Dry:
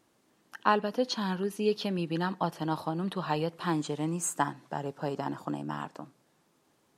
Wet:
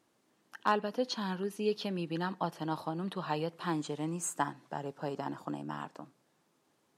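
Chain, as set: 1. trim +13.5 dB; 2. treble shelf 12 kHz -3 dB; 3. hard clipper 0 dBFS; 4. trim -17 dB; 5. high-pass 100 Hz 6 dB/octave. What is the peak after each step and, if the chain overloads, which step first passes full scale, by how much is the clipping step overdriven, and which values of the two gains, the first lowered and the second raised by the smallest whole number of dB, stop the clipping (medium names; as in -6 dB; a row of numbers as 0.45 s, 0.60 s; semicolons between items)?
+4.0 dBFS, +4.0 dBFS, 0.0 dBFS, -17.0 dBFS, -16.0 dBFS; step 1, 4.0 dB; step 1 +9.5 dB, step 4 -13 dB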